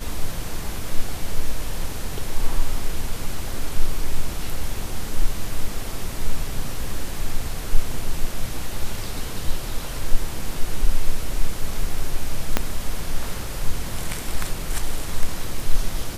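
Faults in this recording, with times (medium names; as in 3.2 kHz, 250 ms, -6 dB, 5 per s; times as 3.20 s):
12.57 s: pop -3 dBFS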